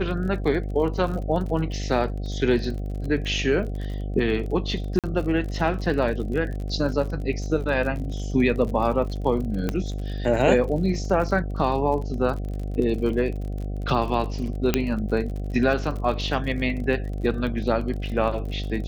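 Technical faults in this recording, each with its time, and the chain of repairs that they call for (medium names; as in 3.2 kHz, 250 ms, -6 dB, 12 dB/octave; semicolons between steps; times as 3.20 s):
buzz 50 Hz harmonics 15 -29 dBFS
crackle 40 per s -32 dBFS
4.99–5.04 s: dropout 47 ms
9.69 s: pop -12 dBFS
14.74 s: pop -5 dBFS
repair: de-click; de-hum 50 Hz, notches 15; interpolate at 4.99 s, 47 ms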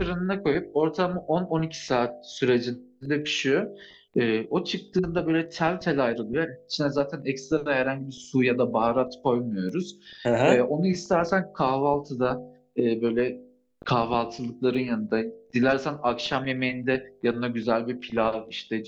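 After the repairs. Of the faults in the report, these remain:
9.69 s: pop
14.74 s: pop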